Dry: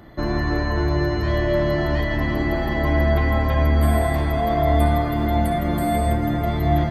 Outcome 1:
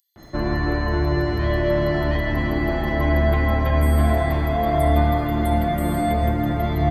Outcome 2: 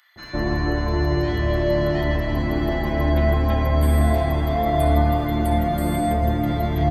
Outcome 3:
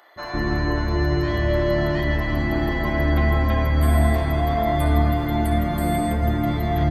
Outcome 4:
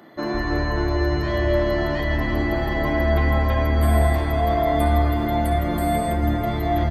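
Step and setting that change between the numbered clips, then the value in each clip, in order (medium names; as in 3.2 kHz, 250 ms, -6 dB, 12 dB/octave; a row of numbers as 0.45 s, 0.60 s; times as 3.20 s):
bands offset in time, split: 5.6 kHz, 1.5 kHz, 570 Hz, 170 Hz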